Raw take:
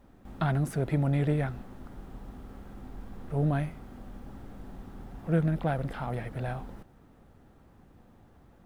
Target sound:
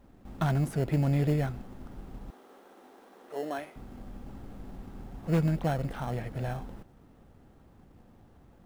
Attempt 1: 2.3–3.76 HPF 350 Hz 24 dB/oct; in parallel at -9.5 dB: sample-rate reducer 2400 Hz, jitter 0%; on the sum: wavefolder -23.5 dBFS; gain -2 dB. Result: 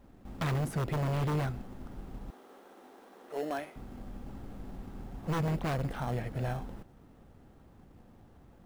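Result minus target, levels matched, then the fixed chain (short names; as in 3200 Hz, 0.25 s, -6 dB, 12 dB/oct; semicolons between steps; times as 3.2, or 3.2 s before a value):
wavefolder: distortion +20 dB
2.3–3.76 HPF 350 Hz 24 dB/oct; in parallel at -9.5 dB: sample-rate reducer 2400 Hz, jitter 0%; on the sum: wavefolder -17 dBFS; gain -2 dB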